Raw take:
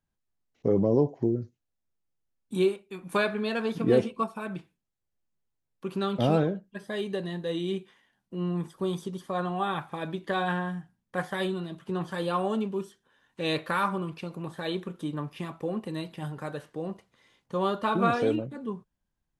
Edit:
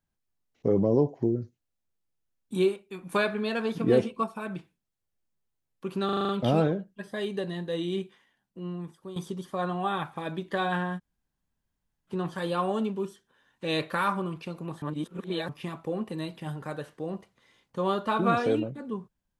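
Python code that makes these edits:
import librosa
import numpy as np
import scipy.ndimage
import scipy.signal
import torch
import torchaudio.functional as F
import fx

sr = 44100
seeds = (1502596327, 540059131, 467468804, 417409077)

y = fx.edit(x, sr, fx.stutter(start_s=6.05, slice_s=0.04, count=7),
    fx.fade_out_to(start_s=7.74, length_s=1.18, floor_db=-13.0),
    fx.room_tone_fill(start_s=10.74, length_s=1.11, crossfade_s=0.04),
    fx.reverse_span(start_s=14.58, length_s=0.67), tone=tone)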